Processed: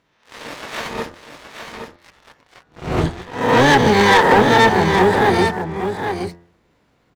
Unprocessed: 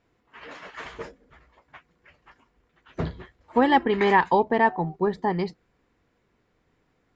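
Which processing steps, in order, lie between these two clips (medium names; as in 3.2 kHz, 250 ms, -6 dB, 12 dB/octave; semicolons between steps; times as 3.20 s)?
reverse spectral sustain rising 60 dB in 0.64 s; high-pass 64 Hz 12 dB/octave; harmony voices -12 st -4 dB, +5 st -16 dB, +12 st -5 dB; reverse; upward compressor, threshold -39 dBFS; reverse; waveshaping leveller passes 3; de-hum 86.19 Hz, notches 23; on a send: delay 819 ms -7.5 dB; on the sum: trim -3.5 dB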